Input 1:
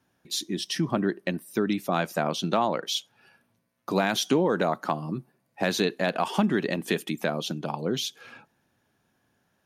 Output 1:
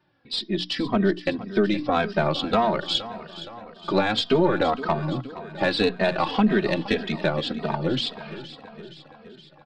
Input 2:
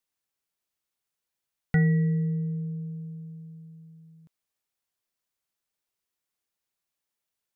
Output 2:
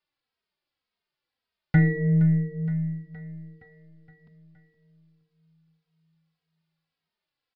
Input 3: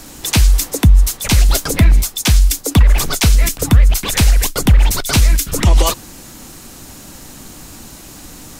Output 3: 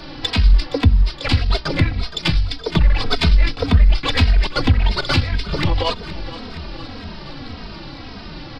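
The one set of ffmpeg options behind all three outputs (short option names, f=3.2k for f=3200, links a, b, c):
-filter_complex "[0:a]bandreject=f=60:t=h:w=6,bandreject=f=120:t=h:w=6,bandreject=f=180:t=h:w=6,bandreject=f=240:t=h:w=6,bandreject=f=300:t=h:w=6,asplit=2[a][b];[b]acompressor=threshold=-21dB:ratio=6,volume=2.5dB[c];[a][c]amix=inputs=2:normalize=0,alimiter=limit=-2.5dB:level=0:latency=1:release=304,aresample=11025,aresample=44100,aeval=exprs='0.794*(cos(1*acos(clip(val(0)/0.794,-1,1)))-cos(1*PI/2))+0.0631*(cos(4*acos(clip(val(0)/0.794,-1,1)))-cos(4*PI/2))+0.00447*(cos(8*acos(clip(val(0)/0.794,-1,1)))-cos(8*PI/2))':c=same,aecho=1:1:468|936|1404|1872|2340|2808:0.178|0.105|0.0619|0.0365|0.0215|0.0127,asplit=2[d][e];[e]adelay=2.9,afreqshift=-1.8[f];[d][f]amix=inputs=2:normalize=1"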